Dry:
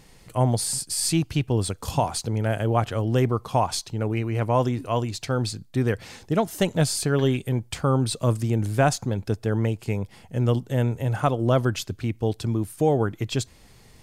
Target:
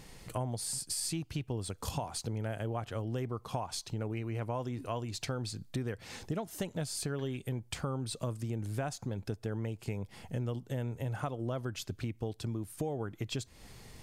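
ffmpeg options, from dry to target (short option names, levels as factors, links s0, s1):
-af "acompressor=threshold=0.02:ratio=6"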